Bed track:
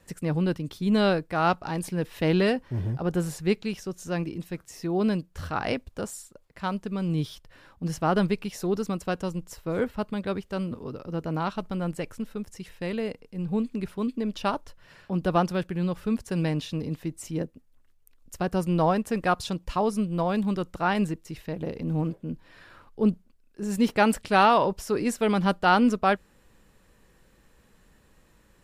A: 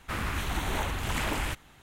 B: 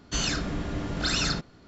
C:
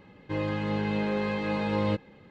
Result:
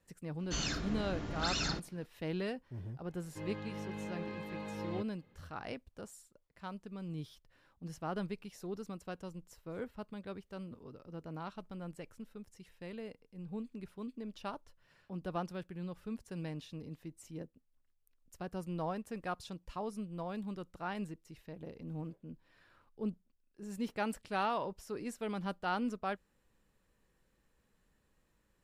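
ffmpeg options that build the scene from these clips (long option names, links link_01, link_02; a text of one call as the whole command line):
ffmpeg -i bed.wav -i cue0.wav -i cue1.wav -i cue2.wav -filter_complex "[0:a]volume=-15dB[link_01];[2:a]aresample=16000,aresample=44100,atrim=end=1.67,asetpts=PTS-STARTPTS,volume=-8.5dB,afade=type=in:duration=0.004:curve=hsin,afade=type=out:start_time=1.666:duration=0.004:curve=hsin,adelay=390[link_02];[3:a]atrim=end=2.3,asetpts=PTS-STARTPTS,volume=-14dB,afade=type=in:duration=0.004:curve=hsin,afade=type=out:start_time=2.296:duration=0.004:curve=hsin,adelay=3060[link_03];[link_01][link_02][link_03]amix=inputs=3:normalize=0" out.wav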